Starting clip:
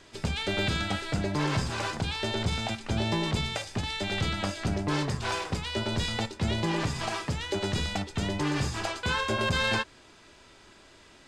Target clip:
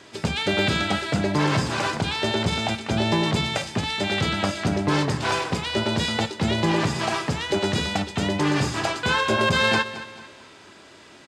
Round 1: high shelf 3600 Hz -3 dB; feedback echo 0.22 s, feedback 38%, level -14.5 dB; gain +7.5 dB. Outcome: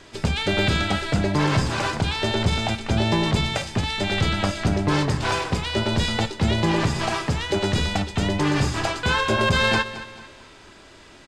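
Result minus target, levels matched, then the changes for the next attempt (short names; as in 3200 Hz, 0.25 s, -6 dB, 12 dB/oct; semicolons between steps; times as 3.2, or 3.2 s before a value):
125 Hz band +2.5 dB
add first: HPF 120 Hz 12 dB/oct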